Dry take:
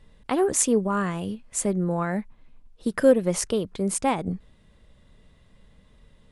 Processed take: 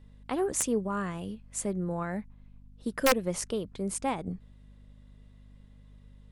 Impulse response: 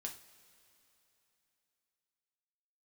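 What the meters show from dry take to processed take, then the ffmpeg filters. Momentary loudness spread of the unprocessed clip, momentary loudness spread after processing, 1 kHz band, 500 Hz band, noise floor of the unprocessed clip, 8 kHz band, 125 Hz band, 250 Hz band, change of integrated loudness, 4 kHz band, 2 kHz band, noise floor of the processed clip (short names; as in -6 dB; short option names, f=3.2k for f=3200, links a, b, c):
12 LU, 13 LU, -5.0 dB, -8.0 dB, -57 dBFS, -6.5 dB, -7.0 dB, -7.5 dB, -7.0 dB, -1.5 dB, -2.0 dB, -56 dBFS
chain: -af "aeval=exprs='(mod(2.51*val(0)+1,2)-1)/2.51':c=same,aeval=exprs='val(0)+0.00562*(sin(2*PI*50*n/s)+sin(2*PI*2*50*n/s)/2+sin(2*PI*3*50*n/s)/3+sin(2*PI*4*50*n/s)/4+sin(2*PI*5*50*n/s)/5)':c=same,volume=-7dB"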